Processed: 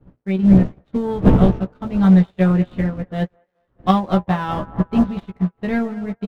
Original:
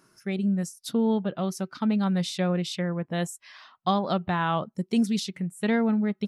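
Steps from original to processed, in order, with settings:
running median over 9 samples
wind on the microphone 240 Hz −34 dBFS
low-pass filter 3,900 Hz 24 dB per octave
low-shelf EQ 320 Hz +4.5 dB
leveller curve on the samples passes 2
double-tracking delay 16 ms −4.5 dB
on a send: delay with a band-pass on its return 214 ms, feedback 66%, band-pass 890 Hz, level −9 dB
on the sum: expander for the loud parts 2.5 to 1, over −34 dBFS
level +3 dB

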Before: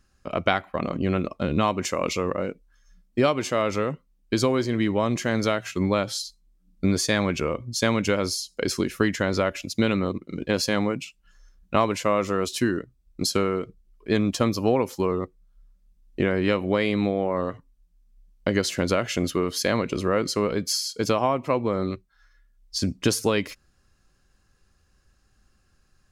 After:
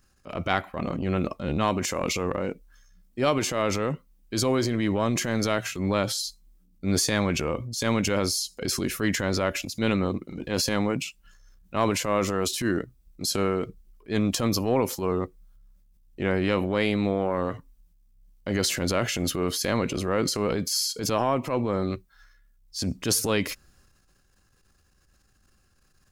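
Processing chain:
high-shelf EQ 11,000 Hz +10.5 dB
transient designer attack −9 dB, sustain +6 dB
level −1 dB

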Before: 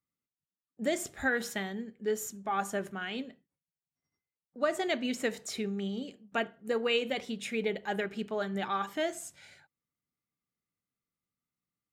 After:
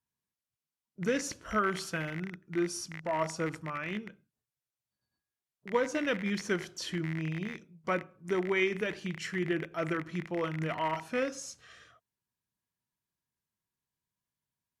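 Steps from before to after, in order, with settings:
loose part that buzzes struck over −48 dBFS, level −29 dBFS
change of speed 0.806×

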